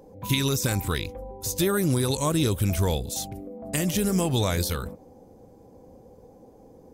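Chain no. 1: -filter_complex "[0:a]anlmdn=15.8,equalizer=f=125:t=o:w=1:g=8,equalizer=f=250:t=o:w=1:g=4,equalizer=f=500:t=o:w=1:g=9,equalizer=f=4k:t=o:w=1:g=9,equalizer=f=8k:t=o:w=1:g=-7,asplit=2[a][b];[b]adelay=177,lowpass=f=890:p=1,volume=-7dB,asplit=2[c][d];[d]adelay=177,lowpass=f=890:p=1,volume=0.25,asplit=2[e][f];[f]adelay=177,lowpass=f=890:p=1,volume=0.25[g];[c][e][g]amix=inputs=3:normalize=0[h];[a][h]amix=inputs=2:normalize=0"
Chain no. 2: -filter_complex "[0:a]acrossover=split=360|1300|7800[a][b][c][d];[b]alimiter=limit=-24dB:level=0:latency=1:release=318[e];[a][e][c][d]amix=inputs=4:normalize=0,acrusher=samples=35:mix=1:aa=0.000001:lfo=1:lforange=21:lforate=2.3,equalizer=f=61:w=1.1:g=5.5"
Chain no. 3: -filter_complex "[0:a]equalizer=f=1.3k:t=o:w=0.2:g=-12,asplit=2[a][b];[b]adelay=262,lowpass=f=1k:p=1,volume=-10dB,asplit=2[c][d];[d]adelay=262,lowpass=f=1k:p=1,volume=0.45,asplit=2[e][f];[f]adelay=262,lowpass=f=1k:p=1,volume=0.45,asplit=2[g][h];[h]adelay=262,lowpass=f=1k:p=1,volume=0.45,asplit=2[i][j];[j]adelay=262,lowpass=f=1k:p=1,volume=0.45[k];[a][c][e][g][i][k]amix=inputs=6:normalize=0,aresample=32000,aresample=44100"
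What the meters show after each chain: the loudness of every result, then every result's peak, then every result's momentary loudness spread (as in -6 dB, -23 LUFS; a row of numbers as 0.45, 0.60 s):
-18.5, -25.5, -25.5 LUFS; -3.0, -10.0, -9.0 dBFS; 13, 11, 11 LU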